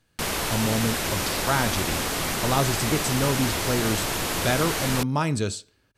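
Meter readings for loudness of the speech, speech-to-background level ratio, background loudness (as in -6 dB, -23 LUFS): -27.0 LUFS, -1.0 dB, -26.0 LUFS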